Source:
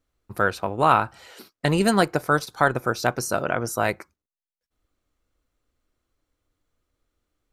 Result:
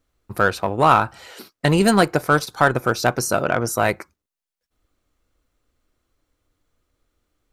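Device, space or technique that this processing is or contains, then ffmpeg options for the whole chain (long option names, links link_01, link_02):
parallel distortion: -filter_complex "[0:a]asplit=2[link_01][link_02];[link_02]asoftclip=type=hard:threshold=-19dB,volume=-6dB[link_03];[link_01][link_03]amix=inputs=2:normalize=0,volume=1.5dB"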